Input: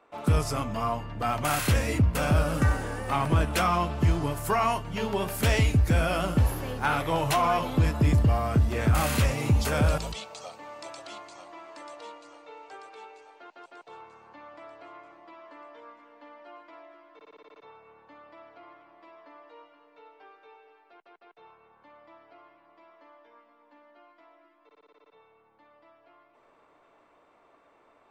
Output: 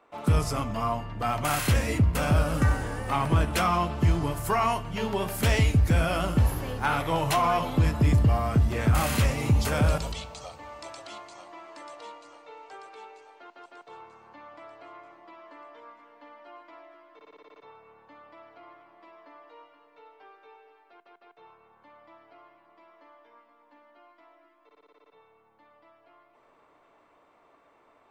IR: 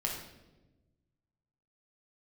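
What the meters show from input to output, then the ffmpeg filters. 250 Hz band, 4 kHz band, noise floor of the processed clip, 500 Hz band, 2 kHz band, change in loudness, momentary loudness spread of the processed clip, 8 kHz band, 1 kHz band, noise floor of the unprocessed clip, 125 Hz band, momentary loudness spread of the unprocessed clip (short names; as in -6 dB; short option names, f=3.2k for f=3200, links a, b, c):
+0.5 dB, 0.0 dB, -62 dBFS, -0.5 dB, 0.0 dB, +0.5 dB, 19 LU, 0.0 dB, +0.5 dB, -63 dBFS, +0.5 dB, 19 LU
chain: -filter_complex "[0:a]asplit=2[a][b];[1:a]atrim=start_sample=2205[c];[b][c]afir=irnorm=-1:irlink=0,volume=-17.5dB[d];[a][d]amix=inputs=2:normalize=0,volume=-1dB"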